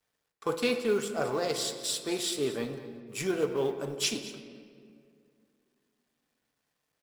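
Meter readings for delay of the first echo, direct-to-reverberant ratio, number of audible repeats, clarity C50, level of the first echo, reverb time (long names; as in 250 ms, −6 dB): 220 ms, 7.5 dB, 1, 9.0 dB, −16.5 dB, 2.2 s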